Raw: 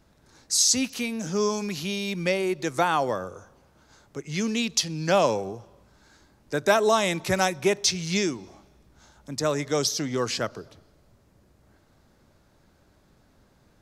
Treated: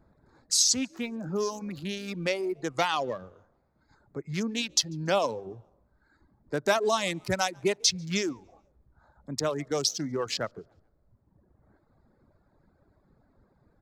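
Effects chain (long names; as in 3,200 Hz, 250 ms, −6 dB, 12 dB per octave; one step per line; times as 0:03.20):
adaptive Wiener filter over 15 samples
gain on a spectral selection 0:02.77–0:03.94, 1,800–7,000 Hz +6 dB
on a send: echo with shifted repeats 142 ms, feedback 39%, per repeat +65 Hz, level −23 dB
on the sum: dynamic equaliser 4,300 Hz, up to +5 dB, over −38 dBFS, Q 0.82
in parallel at −1 dB: downward compressor, threshold −28 dBFS, peak gain reduction 13.5 dB
on the sum: reverb reduction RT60 1.3 s
level −6 dB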